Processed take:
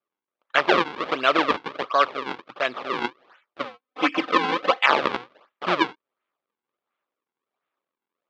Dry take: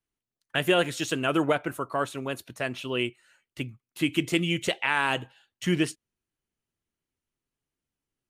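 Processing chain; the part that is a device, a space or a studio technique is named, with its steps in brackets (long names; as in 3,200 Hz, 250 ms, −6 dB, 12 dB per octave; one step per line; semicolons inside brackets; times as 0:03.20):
circuit-bent sampling toy (sample-and-hold swept by an LFO 41×, swing 160% 1.4 Hz; loudspeaker in its box 460–4,100 Hz, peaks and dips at 570 Hz +3 dB, 1,200 Hz +9 dB, 2,300 Hz +3 dB, 3,400 Hz +3 dB)
0:03.65–0:04.86: comb filter 3.9 ms, depth 81%
level +5.5 dB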